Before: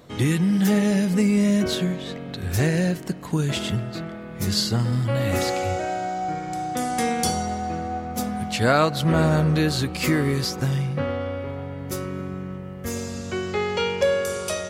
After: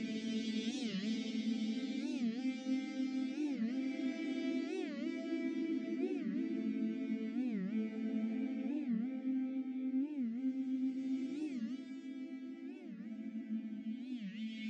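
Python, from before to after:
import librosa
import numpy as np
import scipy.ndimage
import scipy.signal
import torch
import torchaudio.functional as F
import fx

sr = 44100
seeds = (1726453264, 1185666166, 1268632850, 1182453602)

y = fx.vocoder_arp(x, sr, chord='minor triad', root=57, every_ms=215)
y = fx.vowel_filter(y, sr, vowel='i')
y = fx.high_shelf(y, sr, hz=4500.0, db=11.5)
y = y + 10.0 ** (-23.5 / 20.0) * np.pad(y, (int(918 * sr / 1000.0), 0))[:len(y)]
y = fx.step_gate(y, sr, bpm=145, pattern='xxxx....x.xxxxx', floor_db=-12.0, edge_ms=4.5)
y = fx.low_shelf(y, sr, hz=270.0, db=-9.5)
y = fx.echo_feedback(y, sr, ms=164, feedback_pct=55, wet_db=-18.5)
y = fx.paulstretch(y, sr, seeds[0], factor=11.0, window_s=0.25, from_s=7.18)
y = fx.rider(y, sr, range_db=5, speed_s=0.5)
y = fx.record_warp(y, sr, rpm=45.0, depth_cents=250.0)
y = F.gain(torch.from_numpy(y), 6.5).numpy()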